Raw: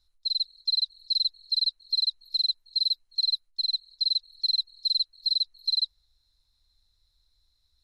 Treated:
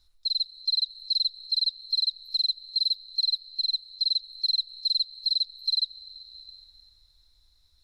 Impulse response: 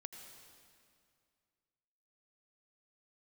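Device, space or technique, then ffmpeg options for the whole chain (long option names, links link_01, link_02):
ducked reverb: -filter_complex "[0:a]asplit=3[link_01][link_02][link_03];[1:a]atrim=start_sample=2205[link_04];[link_02][link_04]afir=irnorm=-1:irlink=0[link_05];[link_03]apad=whole_len=345522[link_06];[link_05][link_06]sidechaincompress=threshold=-39dB:ratio=8:attack=16:release=557,volume=8dB[link_07];[link_01][link_07]amix=inputs=2:normalize=0,volume=-1.5dB"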